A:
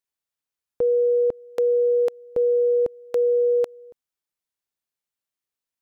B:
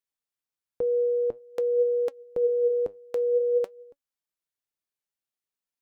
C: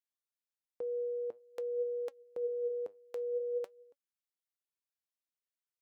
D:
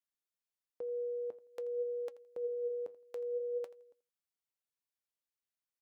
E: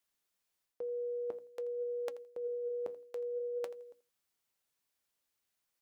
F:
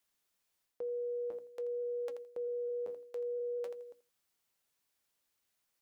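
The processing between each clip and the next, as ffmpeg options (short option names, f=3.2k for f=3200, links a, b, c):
-af "flanger=delay=3.5:depth=6.6:regen=71:speed=0.5:shape=sinusoidal"
-af "highpass=f=570:p=1,volume=-8dB"
-af "aecho=1:1:83|166:0.119|0.025,volume=-2.5dB"
-af "bandreject=f=60:t=h:w=6,bandreject=f=120:t=h:w=6,bandreject=f=180:t=h:w=6,bandreject=f=240:t=h:w=6,bandreject=f=300:t=h:w=6,areverse,acompressor=threshold=-47dB:ratio=5,areverse,volume=9.5dB"
-af "alimiter=level_in=12.5dB:limit=-24dB:level=0:latency=1:release=12,volume=-12.5dB,volume=2.5dB"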